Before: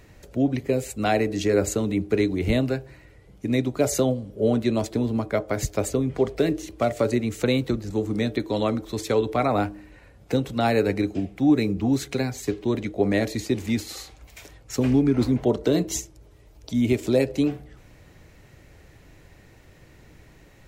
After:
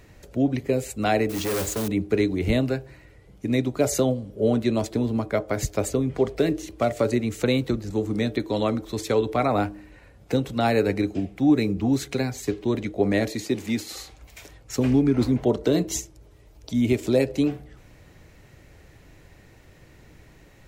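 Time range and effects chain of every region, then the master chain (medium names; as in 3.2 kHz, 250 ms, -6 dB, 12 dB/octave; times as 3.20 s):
1.29–1.88 s: modulation noise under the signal 10 dB + hard clipper -23 dBFS
13.30–13.93 s: Bessel high-pass 150 Hz + short-mantissa float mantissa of 6-bit
whole clip: none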